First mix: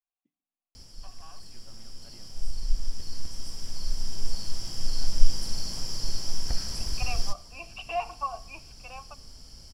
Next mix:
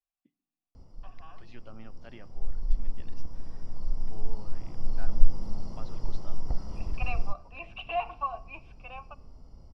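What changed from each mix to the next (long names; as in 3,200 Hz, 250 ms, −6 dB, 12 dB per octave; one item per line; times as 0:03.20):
first voice +9.0 dB
background: add Savitzky-Golay smoothing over 65 samples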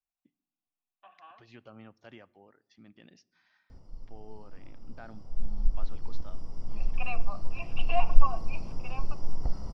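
background: entry +2.95 s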